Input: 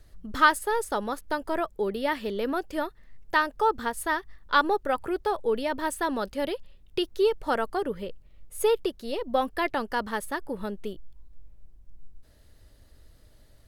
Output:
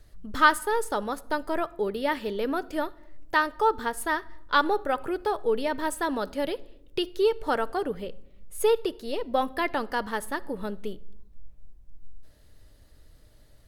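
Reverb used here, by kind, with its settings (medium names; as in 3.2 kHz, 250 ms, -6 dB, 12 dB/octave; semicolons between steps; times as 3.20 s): simulated room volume 2400 m³, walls furnished, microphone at 0.43 m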